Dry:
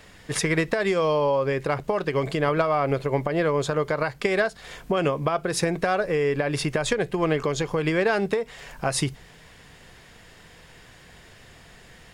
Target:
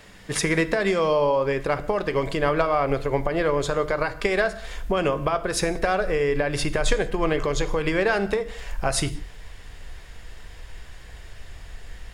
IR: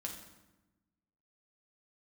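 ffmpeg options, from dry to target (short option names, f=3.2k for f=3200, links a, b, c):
-filter_complex "[0:a]asplit=2[a][b];[1:a]atrim=start_sample=2205,afade=t=out:st=0.25:d=0.01,atrim=end_sample=11466[c];[b][c]afir=irnorm=-1:irlink=0,volume=-3.5dB[d];[a][d]amix=inputs=2:normalize=0,asubboost=boost=10:cutoff=54,volume=-2dB"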